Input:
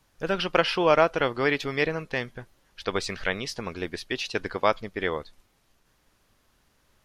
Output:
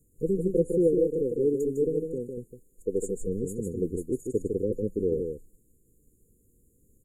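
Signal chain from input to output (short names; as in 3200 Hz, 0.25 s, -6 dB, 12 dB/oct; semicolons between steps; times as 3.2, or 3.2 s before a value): 0.87–3.27 bell 78 Hz -11 dB 2.5 oct; brick-wall FIR band-stop 520–6700 Hz; echo 0.154 s -5 dB; gain +3.5 dB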